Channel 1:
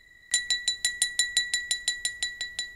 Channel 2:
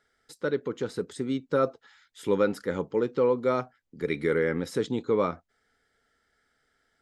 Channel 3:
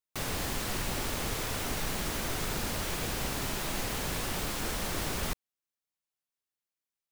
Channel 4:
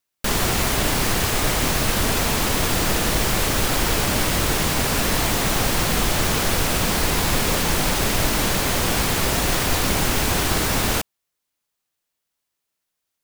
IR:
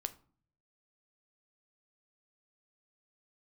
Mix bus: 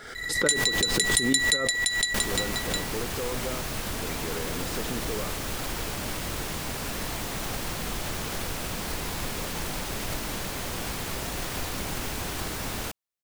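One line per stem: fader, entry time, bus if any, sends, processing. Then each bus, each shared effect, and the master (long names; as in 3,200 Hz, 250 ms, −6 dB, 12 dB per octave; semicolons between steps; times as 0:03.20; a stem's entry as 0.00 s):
0.0 dB, 0.15 s, no bus, no send, high-shelf EQ 9,900 Hz +5 dB
−1.0 dB, 0.00 s, bus A, no send, no processing
0:01.45 −2 dB → 0:02.16 −9 dB, 0.35 s, bus A, no send, automatic ducking −10 dB, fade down 1.00 s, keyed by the second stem
−12.0 dB, 1.90 s, no bus, no send, no processing
bus A: 0.0 dB, speech leveller 0.5 s; brickwall limiter −27 dBFS, peak gain reduction 12.5 dB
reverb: not used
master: background raised ahead of every attack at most 52 dB per second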